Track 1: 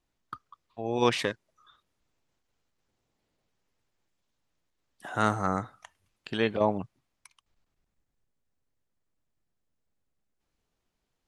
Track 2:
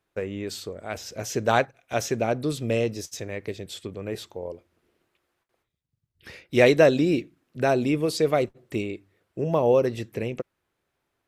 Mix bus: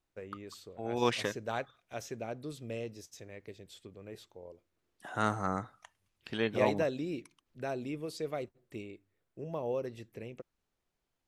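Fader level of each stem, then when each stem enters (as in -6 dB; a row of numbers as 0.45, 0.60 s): -5.0, -15.0 dB; 0.00, 0.00 s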